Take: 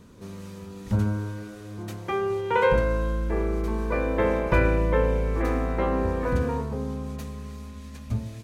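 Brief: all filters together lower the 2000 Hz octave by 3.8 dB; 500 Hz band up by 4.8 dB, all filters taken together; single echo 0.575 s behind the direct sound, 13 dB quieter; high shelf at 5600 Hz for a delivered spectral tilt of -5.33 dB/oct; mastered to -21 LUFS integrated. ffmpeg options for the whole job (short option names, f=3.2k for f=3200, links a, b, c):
-af "equalizer=f=500:t=o:g=5.5,equalizer=f=2k:t=o:g=-6.5,highshelf=f=5.6k:g=6,aecho=1:1:575:0.224,volume=2.5dB"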